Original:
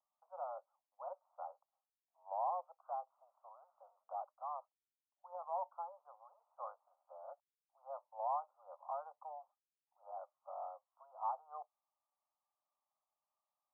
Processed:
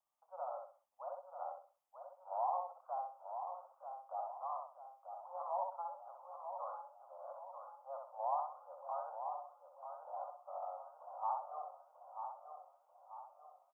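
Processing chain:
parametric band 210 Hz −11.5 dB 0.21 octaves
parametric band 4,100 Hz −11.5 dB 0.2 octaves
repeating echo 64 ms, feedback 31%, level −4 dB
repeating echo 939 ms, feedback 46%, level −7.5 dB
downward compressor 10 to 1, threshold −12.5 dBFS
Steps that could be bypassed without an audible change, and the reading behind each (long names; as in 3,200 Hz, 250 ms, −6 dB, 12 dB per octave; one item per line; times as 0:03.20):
parametric band 210 Hz: nothing at its input below 450 Hz
parametric band 4,100 Hz: nothing at its input above 1,400 Hz
downward compressor, threshold −12.5 dBFS: peak of its input −24.5 dBFS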